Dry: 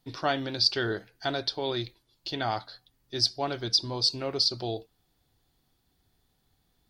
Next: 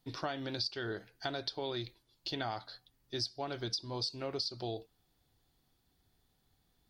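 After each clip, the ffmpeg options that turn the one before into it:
-af "acompressor=threshold=0.0316:ratio=16,volume=0.708"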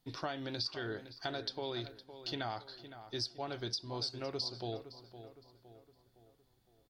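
-filter_complex "[0:a]asplit=2[s0][s1];[s1]adelay=512,lowpass=f=2800:p=1,volume=0.251,asplit=2[s2][s3];[s3]adelay=512,lowpass=f=2800:p=1,volume=0.48,asplit=2[s4][s5];[s5]adelay=512,lowpass=f=2800:p=1,volume=0.48,asplit=2[s6][s7];[s7]adelay=512,lowpass=f=2800:p=1,volume=0.48,asplit=2[s8][s9];[s9]adelay=512,lowpass=f=2800:p=1,volume=0.48[s10];[s0][s2][s4][s6][s8][s10]amix=inputs=6:normalize=0,volume=0.841"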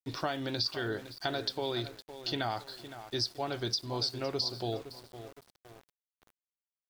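-af "aeval=exprs='val(0)*gte(abs(val(0)),0.00178)':c=same,volume=1.88"

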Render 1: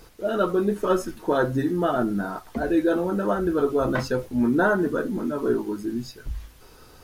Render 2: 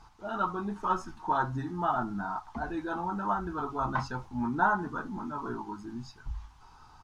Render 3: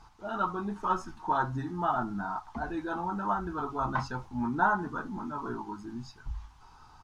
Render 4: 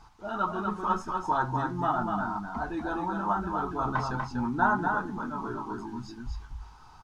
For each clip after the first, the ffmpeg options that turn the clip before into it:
-af "firequalizer=gain_entry='entry(120,0);entry(520,-17);entry(840,11);entry(1800,-5);entry(6200,-4);entry(12000,-22)':delay=0.05:min_phase=1,volume=0.531"
-af anull
-af "aecho=1:1:243:0.596,volume=1.12"

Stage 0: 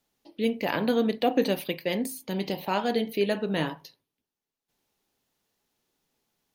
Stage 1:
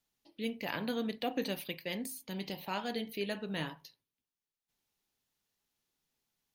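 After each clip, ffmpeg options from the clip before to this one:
-af "equalizer=f=450:t=o:w=2.6:g=-7,volume=0.531"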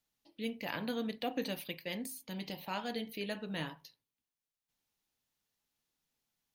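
-af "bandreject=f=390:w=12,volume=0.841"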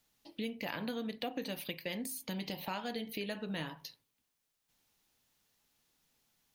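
-af "acompressor=threshold=0.00447:ratio=4,volume=2.99"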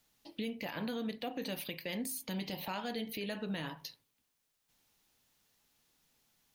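-af "alimiter=level_in=2.24:limit=0.0631:level=0:latency=1:release=15,volume=0.447,volume=1.26"

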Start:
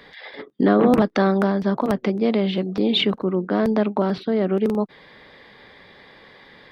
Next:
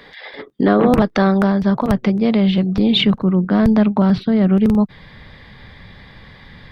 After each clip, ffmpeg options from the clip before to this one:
-af "asubboost=boost=11.5:cutoff=120,volume=1.58"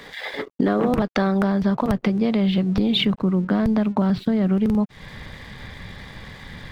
-af "acompressor=threshold=0.0708:ratio=4,aeval=exprs='sgn(val(0))*max(abs(val(0))-0.00237,0)':c=same,volume=1.68"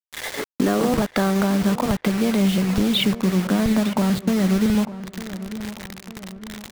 -filter_complex "[0:a]acrusher=bits=4:mix=0:aa=0.000001,asplit=2[s0][s1];[s1]adelay=902,lowpass=f=2100:p=1,volume=0.2,asplit=2[s2][s3];[s3]adelay=902,lowpass=f=2100:p=1,volume=0.5,asplit=2[s4][s5];[s5]adelay=902,lowpass=f=2100:p=1,volume=0.5,asplit=2[s6][s7];[s7]adelay=902,lowpass=f=2100:p=1,volume=0.5,asplit=2[s8][s9];[s9]adelay=902,lowpass=f=2100:p=1,volume=0.5[s10];[s0][s2][s4][s6][s8][s10]amix=inputs=6:normalize=0"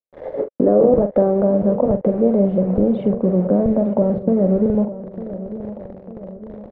-filter_complex "[0:a]lowpass=f=550:t=q:w=4.9,asplit=2[s0][s1];[s1]adelay=44,volume=0.316[s2];[s0][s2]amix=inputs=2:normalize=0"

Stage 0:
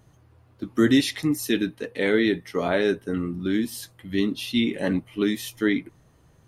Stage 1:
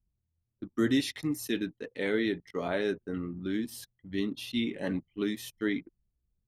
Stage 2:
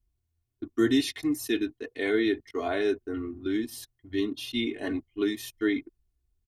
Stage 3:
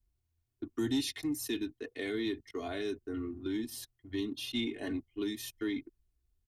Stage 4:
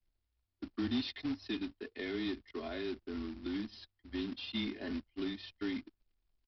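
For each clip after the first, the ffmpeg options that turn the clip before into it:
-af "anlmdn=0.631,volume=0.398"
-af "aecho=1:1:2.8:0.95"
-filter_complex "[0:a]acrossover=split=260|3000[s0][s1][s2];[s1]acompressor=threshold=0.0158:ratio=6[s3];[s0][s3][s2]amix=inputs=3:normalize=0,asoftclip=type=tanh:threshold=0.1,volume=0.794"
-af "afreqshift=-23,aresample=11025,acrusher=bits=3:mode=log:mix=0:aa=0.000001,aresample=44100,volume=0.708"

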